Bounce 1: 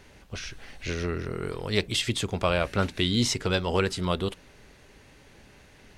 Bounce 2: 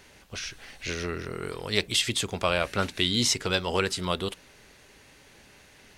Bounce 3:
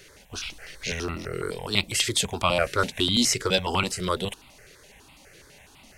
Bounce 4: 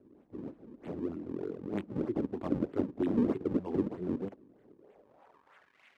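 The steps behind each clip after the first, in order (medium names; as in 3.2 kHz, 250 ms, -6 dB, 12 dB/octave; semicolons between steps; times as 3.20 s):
tilt EQ +1.5 dB/octave
stepped phaser 12 Hz 240–1700 Hz; trim +5.5 dB
decimation with a swept rate 37×, swing 160% 3.2 Hz; band-pass sweep 290 Hz -> 2.2 kHz, 4.66–5.82 s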